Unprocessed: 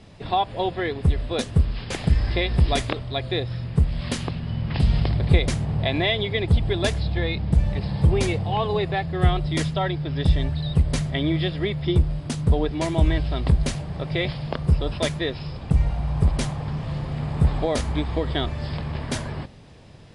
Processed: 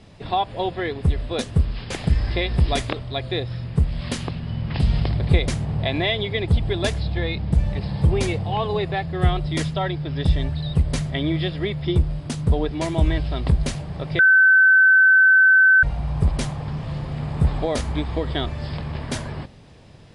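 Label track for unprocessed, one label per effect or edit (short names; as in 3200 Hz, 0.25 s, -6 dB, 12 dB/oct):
14.190000	15.830000	bleep 1530 Hz -10 dBFS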